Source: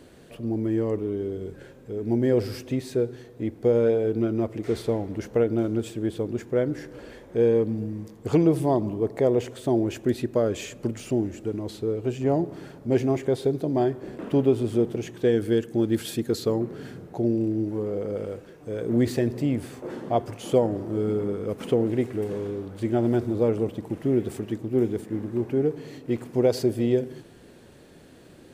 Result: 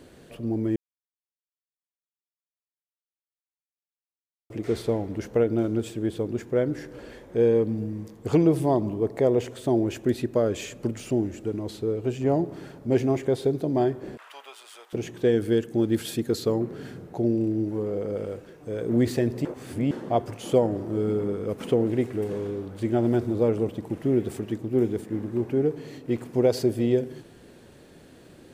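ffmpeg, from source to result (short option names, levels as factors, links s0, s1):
-filter_complex "[0:a]asettb=1/sr,asplit=3[s0][s1][s2];[s0]atrim=end=14.174[s3];[s1]atrim=start=14.17:end=14.93,asetpts=PTS-STARTPTS,afade=t=in:d=0.004:c=qsin,afade=t=out:st=0.756:d=0.004:c=qsin,highpass=f=1000:w=0.5412,highpass=f=1000:w=1.3066[s4];[s2]atrim=start=14.926[s5];[s3][s4]acrossfade=d=0.004:c1=hsin:c2=qsin[s6];[s6][s5]acrossfade=d=0.004:c1=qsin:c2=hsin,asplit=5[s7][s8][s9][s10][s11];[s7]atrim=end=0.76,asetpts=PTS-STARTPTS,afade=t=out:st=0.756:d=0.004:c=hsin[s12];[s8]atrim=start=0.76:end=4.5,asetpts=PTS-STARTPTS,volume=0[s13];[s9]atrim=start=4.5:end=19.452,asetpts=PTS-STARTPTS,afade=t=in:d=0.004:c=hsin[s14];[s10]atrim=start=19.448:end=19.912,asetpts=PTS-STARTPTS,areverse[s15];[s11]atrim=start=19.908[s16];[s12][s13][s14]concat=n=3:v=0:a=1[s17];[s17][s15]acrossfade=d=0.004:c1=hsin:c2=hsin[s18];[s18][s16]acrossfade=d=0.004:c1=hsin:c2=hsin"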